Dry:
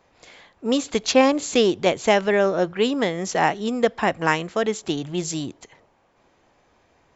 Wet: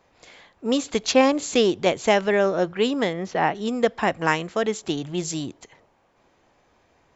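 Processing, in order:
0:03.13–0:03.55: high-frequency loss of the air 210 metres
level −1 dB

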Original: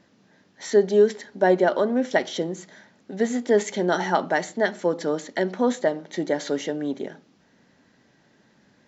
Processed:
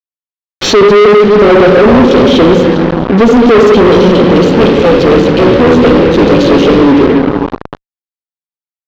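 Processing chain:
0:04.44–0:06.81: sub-harmonics by changed cycles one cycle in 3, muted
linear-phase brick-wall band-stop 570–2,400 Hz
convolution reverb RT60 1.9 s, pre-delay 40 ms, DRR 4 dB
fuzz pedal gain 38 dB, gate −40 dBFS
high-frequency loss of the air 270 metres
boost into a limiter +22 dB
level −1 dB

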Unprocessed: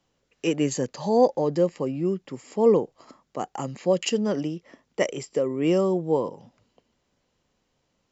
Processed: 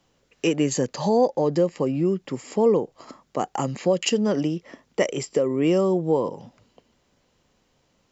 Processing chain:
downward compressor 2 to 1, threshold −27 dBFS, peak gain reduction 8 dB
level +6.5 dB

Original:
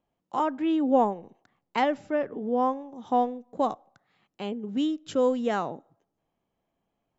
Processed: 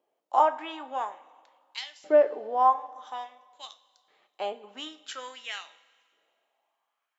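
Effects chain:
auto-filter high-pass saw up 0.49 Hz 420–5,400 Hz
coupled-rooms reverb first 0.28 s, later 2 s, from −18 dB, DRR 8 dB

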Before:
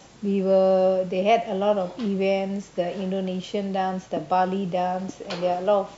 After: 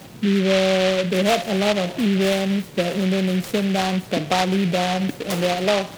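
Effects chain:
high-pass filter 100 Hz
low-shelf EQ 240 Hz +11.5 dB
downward compressor 2 to 1, threshold −25 dBFS, peak gain reduction 7.5 dB
echo through a band-pass that steps 136 ms, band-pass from 3,700 Hz, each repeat −0.7 octaves, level −11 dB
short delay modulated by noise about 2,400 Hz, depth 0.12 ms
level +5 dB

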